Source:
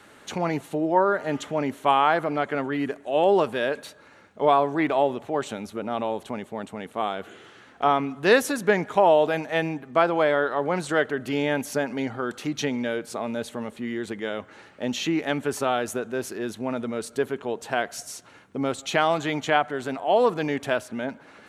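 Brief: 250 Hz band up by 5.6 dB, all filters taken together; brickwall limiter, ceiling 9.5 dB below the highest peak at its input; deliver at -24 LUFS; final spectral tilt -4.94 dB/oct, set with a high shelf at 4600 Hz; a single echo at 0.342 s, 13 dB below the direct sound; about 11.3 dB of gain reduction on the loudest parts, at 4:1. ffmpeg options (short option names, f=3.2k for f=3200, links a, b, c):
-af "equalizer=f=250:t=o:g=7,highshelf=f=4.6k:g=-6,acompressor=threshold=-25dB:ratio=4,alimiter=limit=-21dB:level=0:latency=1,aecho=1:1:342:0.224,volume=7.5dB"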